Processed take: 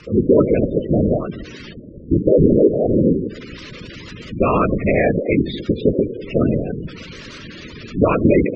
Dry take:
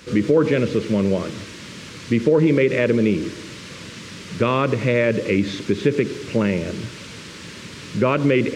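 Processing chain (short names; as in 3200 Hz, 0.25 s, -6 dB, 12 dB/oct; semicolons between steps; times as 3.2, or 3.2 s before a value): 1.73–2.93 steep low-pass 610 Hz 96 dB/oct; whisperiser; spectral gate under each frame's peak -15 dB strong; gain +3 dB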